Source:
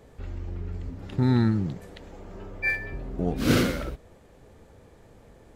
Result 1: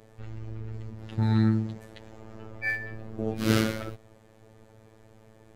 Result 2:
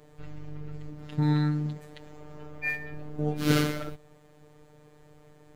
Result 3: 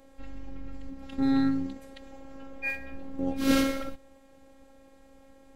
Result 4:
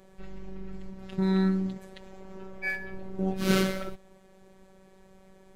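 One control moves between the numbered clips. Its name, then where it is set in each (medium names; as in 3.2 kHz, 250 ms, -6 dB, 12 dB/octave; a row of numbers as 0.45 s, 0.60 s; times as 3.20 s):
robot voice, frequency: 110 Hz, 150 Hz, 270 Hz, 190 Hz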